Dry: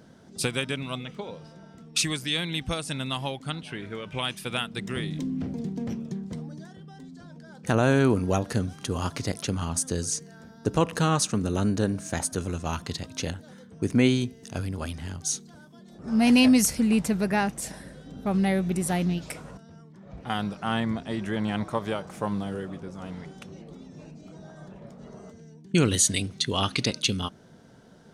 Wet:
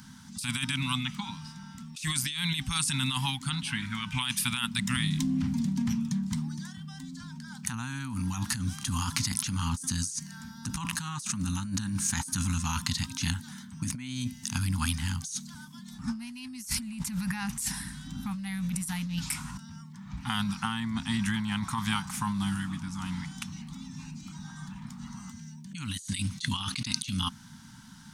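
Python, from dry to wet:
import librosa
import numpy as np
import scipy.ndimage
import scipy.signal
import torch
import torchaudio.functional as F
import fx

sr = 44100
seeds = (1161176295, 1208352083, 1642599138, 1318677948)

y = scipy.signal.sosfilt(scipy.signal.ellip(3, 1.0, 40, [250.0, 900.0], 'bandstop', fs=sr, output='sos'), x)
y = fx.high_shelf(y, sr, hz=4200.0, db=10.0)
y = fx.over_compress(y, sr, threshold_db=-32.0, ratio=-1.0)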